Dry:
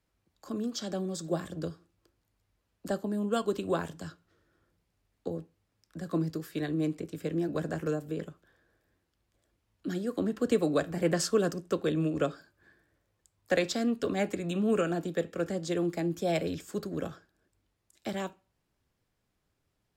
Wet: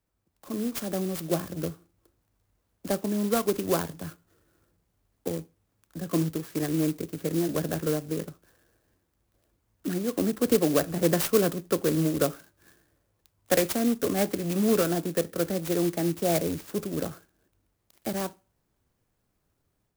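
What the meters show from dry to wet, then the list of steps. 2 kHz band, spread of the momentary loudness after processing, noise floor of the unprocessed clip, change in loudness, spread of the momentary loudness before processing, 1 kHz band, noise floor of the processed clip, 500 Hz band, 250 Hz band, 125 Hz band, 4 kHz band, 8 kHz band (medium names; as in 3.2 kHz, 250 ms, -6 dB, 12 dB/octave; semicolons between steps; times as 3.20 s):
+1.5 dB, 13 LU, -79 dBFS, +4.0 dB, 12 LU, +3.5 dB, -76 dBFS, +3.5 dB, +4.0 dB, +4.0 dB, +4.0 dB, +8.0 dB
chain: level rider gain up to 5.5 dB; sampling jitter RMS 0.091 ms; trim -1.5 dB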